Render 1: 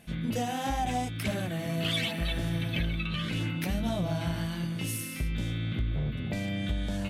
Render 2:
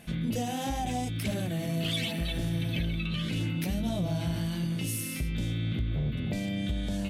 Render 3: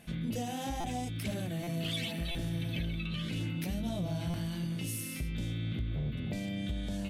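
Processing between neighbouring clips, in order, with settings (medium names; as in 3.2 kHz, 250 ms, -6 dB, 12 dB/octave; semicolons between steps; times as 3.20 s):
hum notches 50/100 Hz; dynamic bell 1.3 kHz, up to -8 dB, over -49 dBFS, Q 0.74; in parallel at +2 dB: peak limiter -30 dBFS, peak gain reduction 9.5 dB; on the sum: trim -3 dB
buffer glitch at 0.80/1.63/2.31/4.30 s, samples 256, times 6; trim -4.5 dB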